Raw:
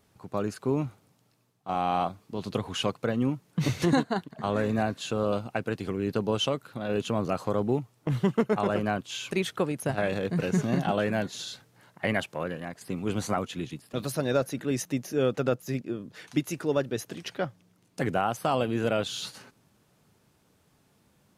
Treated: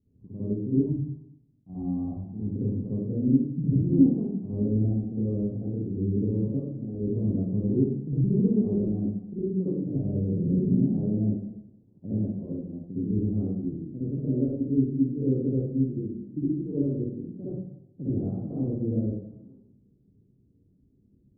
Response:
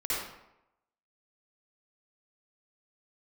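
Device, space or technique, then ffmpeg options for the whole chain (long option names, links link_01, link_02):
next room: -filter_complex "[0:a]lowpass=frequency=300:width=0.5412,lowpass=frequency=300:width=1.3066[link_01];[1:a]atrim=start_sample=2205[link_02];[link_01][link_02]afir=irnorm=-1:irlink=0,asettb=1/sr,asplit=3[link_03][link_04][link_05];[link_03]atrim=end=0.864[link_06];[link_04]atrim=start=0.86:end=2.56,asetpts=PTS-STARTPTS,afade=type=in:duration=0.004:curve=qsin,afade=type=out:start_time=1.696:duration=0.004:curve=qsin,aecho=1:1:1.1:0.54,atrim=end_sample=74970[link_07];[link_05]atrim=start=2.556[link_08];[link_06][link_07]acrossfade=duration=0.004:curve1=hsin:curve2=qsin[link_09];[link_09][link_08]acrossfade=duration=0.004:curve1=qsin:curve2=hsin"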